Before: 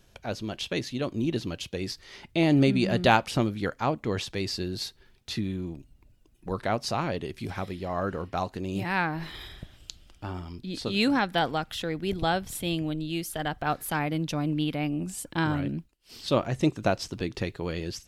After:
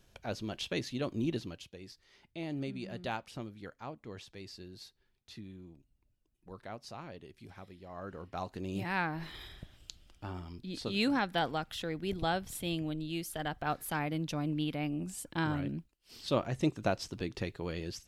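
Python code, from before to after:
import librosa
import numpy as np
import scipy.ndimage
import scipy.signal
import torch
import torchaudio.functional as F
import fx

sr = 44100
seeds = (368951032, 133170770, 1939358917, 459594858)

y = fx.gain(x, sr, db=fx.line((1.29, -5.0), (1.78, -17.0), (7.82, -17.0), (8.63, -6.0)))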